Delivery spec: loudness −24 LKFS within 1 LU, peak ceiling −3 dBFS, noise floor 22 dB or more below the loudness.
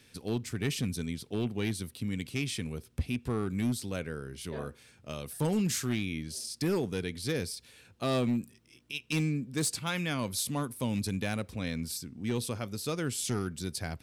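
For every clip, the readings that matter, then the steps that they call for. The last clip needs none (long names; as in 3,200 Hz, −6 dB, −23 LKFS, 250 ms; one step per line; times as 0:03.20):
share of clipped samples 1.3%; peaks flattened at −23.5 dBFS; integrated loudness −33.5 LKFS; sample peak −23.5 dBFS; target loudness −24.0 LKFS
→ clipped peaks rebuilt −23.5 dBFS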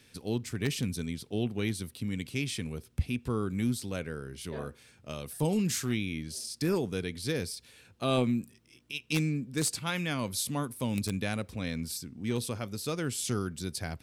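share of clipped samples 0.0%; integrated loudness −33.0 LKFS; sample peak −14.5 dBFS; target loudness −24.0 LKFS
→ level +9 dB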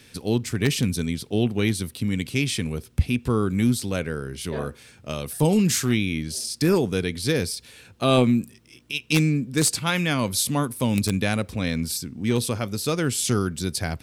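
integrated loudness −24.0 LKFS; sample peak −5.5 dBFS; background noise floor −52 dBFS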